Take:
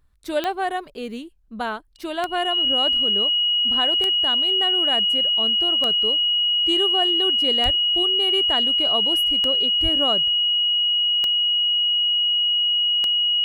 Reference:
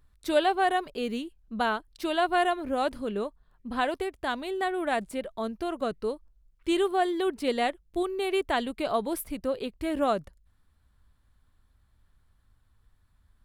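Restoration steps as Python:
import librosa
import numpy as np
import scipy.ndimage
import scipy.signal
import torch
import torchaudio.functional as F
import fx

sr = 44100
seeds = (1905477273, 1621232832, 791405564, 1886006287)

y = fx.fix_declick_ar(x, sr, threshold=10.0)
y = fx.notch(y, sr, hz=2900.0, q=30.0)
y = fx.highpass(y, sr, hz=140.0, slope=24, at=(7.64, 7.76), fade=0.02)
y = fx.highpass(y, sr, hz=140.0, slope=24, at=(9.82, 9.94), fade=0.02)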